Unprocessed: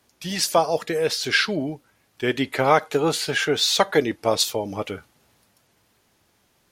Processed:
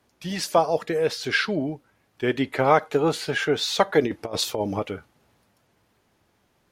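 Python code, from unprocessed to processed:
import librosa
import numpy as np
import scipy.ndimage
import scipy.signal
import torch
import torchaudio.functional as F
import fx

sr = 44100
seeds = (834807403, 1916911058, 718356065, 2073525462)

y = fx.high_shelf(x, sr, hz=2900.0, db=-9.0)
y = fx.over_compress(y, sr, threshold_db=-26.0, ratio=-0.5, at=(4.02, 4.79), fade=0.02)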